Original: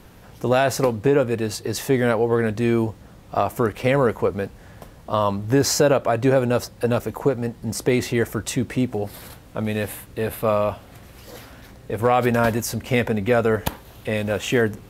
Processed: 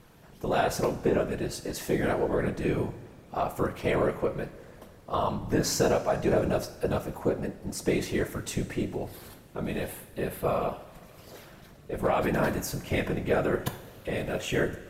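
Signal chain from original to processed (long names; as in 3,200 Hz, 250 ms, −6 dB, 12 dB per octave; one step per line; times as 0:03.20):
random phases in short frames
coupled-rooms reverb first 0.6 s, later 2.7 s, from −15 dB, DRR 8 dB
level −8 dB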